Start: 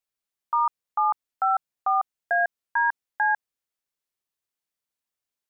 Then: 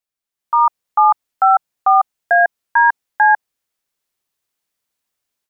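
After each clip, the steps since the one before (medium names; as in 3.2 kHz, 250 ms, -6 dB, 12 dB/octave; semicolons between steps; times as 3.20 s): dynamic bell 830 Hz, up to +3 dB, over -33 dBFS, Q 2.4; level rider gain up to 10 dB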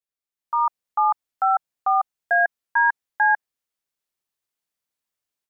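dynamic bell 1.7 kHz, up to +4 dB, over -25 dBFS, Q 5.7; trim -8 dB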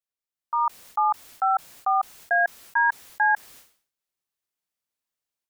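decay stretcher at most 120 dB/s; trim -2.5 dB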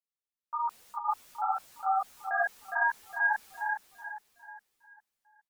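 feedback delay 410 ms, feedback 40%, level -5 dB; three-phase chorus; trim -5.5 dB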